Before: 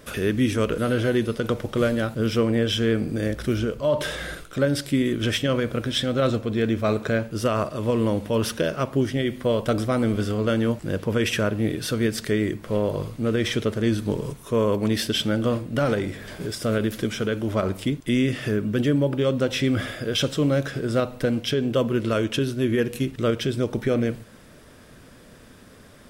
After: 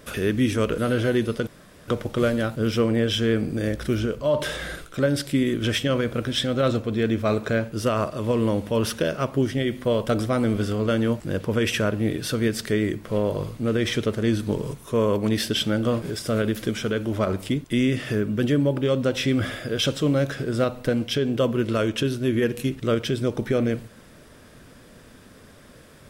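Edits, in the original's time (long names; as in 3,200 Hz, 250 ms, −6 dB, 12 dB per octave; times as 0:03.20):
0:01.47: splice in room tone 0.41 s
0:15.61–0:16.38: remove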